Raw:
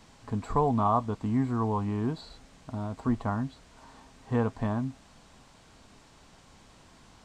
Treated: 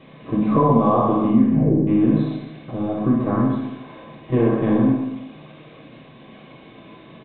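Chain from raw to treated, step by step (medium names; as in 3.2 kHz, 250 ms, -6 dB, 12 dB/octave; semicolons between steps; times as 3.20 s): LPC vocoder at 8 kHz pitch kept; 1.38 s: tape stop 0.49 s; 2.91–3.37 s: distance through air 210 m; reverberation RT60 0.65 s, pre-delay 3 ms, DRR -3 dB; compression 3:1, threshold -15 dBFS, peak gain reduction 7 dB; reverse bouncing-ball echo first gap 60 ms, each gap 1.1×, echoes 5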